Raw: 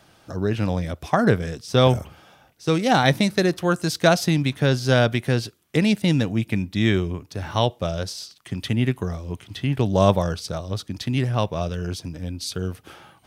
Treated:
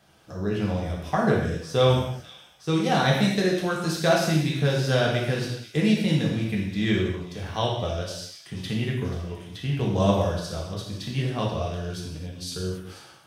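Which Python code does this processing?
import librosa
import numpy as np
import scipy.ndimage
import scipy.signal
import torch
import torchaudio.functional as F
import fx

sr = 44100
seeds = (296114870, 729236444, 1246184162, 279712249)

y = fx.echo_wet_highpass(x, sr, ms=485, feedback_pct=59, hz=2500.0, wet_db=-15)
y = fx.rev_gated(y, sr, seeds[0], gate_ms=300, shape='falling', drr_db=-3.0)
y = y * librosa.db_to_amplitude(-8.0)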